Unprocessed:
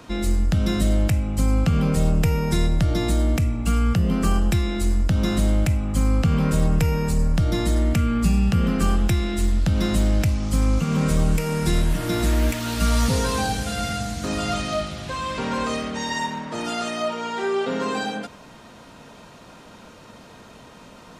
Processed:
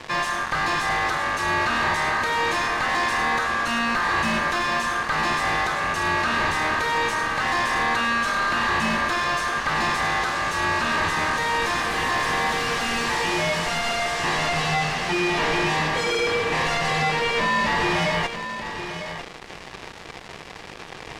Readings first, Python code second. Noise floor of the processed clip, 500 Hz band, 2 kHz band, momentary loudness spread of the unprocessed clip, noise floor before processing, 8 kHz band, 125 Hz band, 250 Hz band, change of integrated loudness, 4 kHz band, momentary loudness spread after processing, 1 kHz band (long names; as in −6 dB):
−40 dBFS, 0.0 dB, +12.5 dB, 6 LU, −46 dBFS, −0.5 dB, −13.0 dB, −8.0 dB, 0.0 dB, +5.5 dB, 9 LU, +8.5 dB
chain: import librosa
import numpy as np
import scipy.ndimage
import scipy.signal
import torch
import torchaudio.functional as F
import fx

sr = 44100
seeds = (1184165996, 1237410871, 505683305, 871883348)

y = scipy.signal.sosfilt(scipy.signal.butter(2, 330.0, 'highpass', fs=sr, output='sos'), x)
y = fx.high_shelf(y, sr, hz=6400.0, db=9.0)
y = y * np.sin(2.0 * np.pi * 1400.0 * np.arange(len(y)) / sr)
y = fx.fuzz(y, sr, gain_db=45.0, gate_db=-44.0)
y = fx.spacing_loss(y, sr, db_at_10k=21)
y = y + 10.0 ** (-10.0 / 20.0) * np.pad(y, (int(951 * sr / 1000.0), 0))[:len(y)]
y = y * librosa.db_to_amplitude(-3.5)